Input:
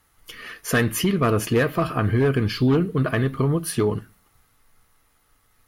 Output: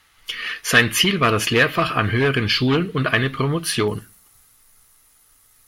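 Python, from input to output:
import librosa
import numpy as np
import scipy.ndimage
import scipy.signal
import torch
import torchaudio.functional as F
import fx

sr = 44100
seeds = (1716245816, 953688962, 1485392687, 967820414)

y = fx.peak_eq(x, sr, hz=fx.steps((0.0, 3000.0), (3.88, 10000.0)), db=14.5, octaves=2.5)
y = y * librosa.db_to_amplitude(-1.0)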